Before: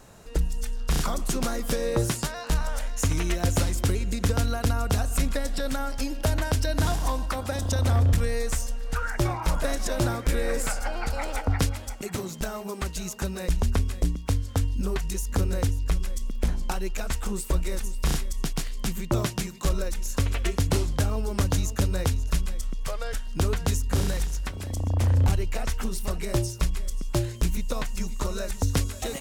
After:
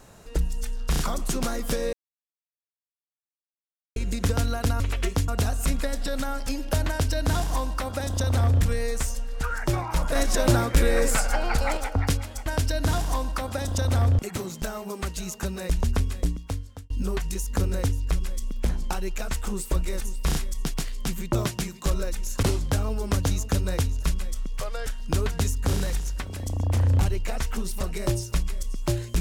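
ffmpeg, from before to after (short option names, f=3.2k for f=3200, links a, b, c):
-filter_complex "[0:a]asplit=11[a][b][c][d][e][f][g][h][i][j][k];[a]atrim=end=1.93,asetpts=PTS-STARTPTS,afade=t=out:st=1.926:d=0.004:c=hsin[l];[b]atrim=start=1.93:end=3.96,asetpts=PTS-STARTPTS,volume=0[m];[c]atrim=start=3.96:end=4.802,asetpts=PTS-STARTPTS,afade=t=in:d=0.004:c=hsin[n];[d]atrim=start=20.218:end=20.702[o];[e]atrim=start=4.798:end=9.672[p];[f]atrim=start=9.668:end=11.292,asetpts=PTS-STARTPTS,volume=5dB[q];[g]atrim=start=11.288:end=11.982[r];[h]atrim=start=6.398:end=8.132[s];[i]atrim=start=11.978:end=14.69,asetpts=PTS-STARTPTS,afade=t=out:st=2.012:d=0.7[t];[j]atrim=start=14.69:end=20.222,asetpts=PTS-STARTPTS,afade=t=in:d=0.004:c=hsin[u];[k]atrim=start=20.698[v];[l][m][n]concat=n=3:v=0:a=1[w];[w][o]acrossfade=d=0.004:c1=hsin:c2=hsin[x];[x][p]acrossfade=d=0.004:c1=hsin:c2=hsin[y];[y][q]acrossfade=d=0.004:c1=hsin:c2=hsin[z];[z][r]acrossfade=d=0.004:c1=hsin:c2=hsin[aa];[aa][s]acrossfade=d=0.004:c1=hsin:c2=hsin[ab];[t][u]concat=n=2:v=0:a=1[ac];[ab][ac]acrossfade=d=0.004:c1=hsin:c2=hsin[ad];[ad][v]acrossfade=d=0.004:c1=hsin:c2=hsin"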